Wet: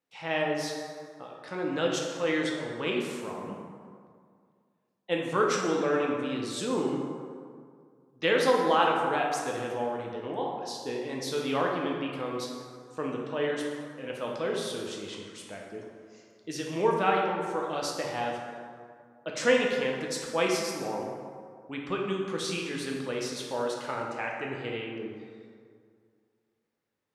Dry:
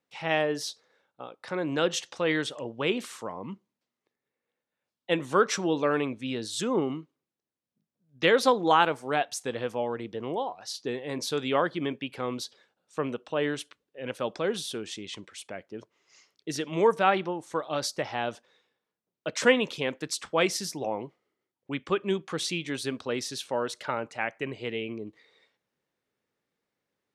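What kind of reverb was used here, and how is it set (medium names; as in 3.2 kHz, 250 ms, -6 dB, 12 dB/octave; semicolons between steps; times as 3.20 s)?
plate-style reverb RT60 2.1 s, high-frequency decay 0.5×, DRR -1.5 dB; trim -5 dB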